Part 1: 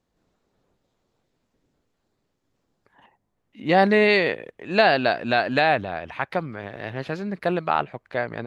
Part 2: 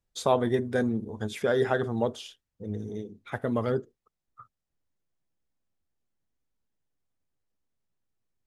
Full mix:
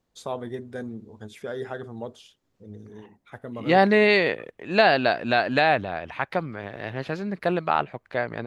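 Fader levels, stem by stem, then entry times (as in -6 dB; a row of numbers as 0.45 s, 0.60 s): -0.5 dB, -8.0 dB; 0.00 s, 0.00 s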